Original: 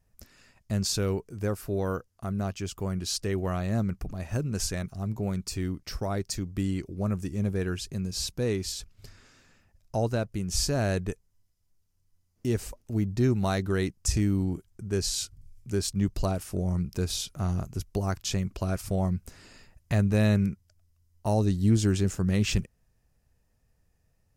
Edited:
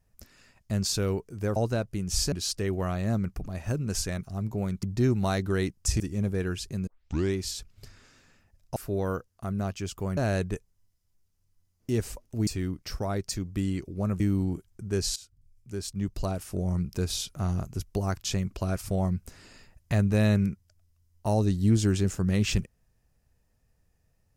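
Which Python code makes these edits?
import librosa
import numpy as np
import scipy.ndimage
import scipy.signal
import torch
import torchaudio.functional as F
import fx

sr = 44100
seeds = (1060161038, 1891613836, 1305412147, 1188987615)

y = fx.edit(x, sr, fx.swap(start_s=1.56, length_s=1.41, other_s=9.97, other_length_s=0.76),
    fx.swap(start_s=5.48, length_s=1.73, other_s=13.03, other_length_s=1.17),
    fx.tape_start(start_s=8.08, length_s=0.47),
    fx.fade_in_from(start_s=15.16, length_s=1.57, floor_db=-17.5), tone=tone)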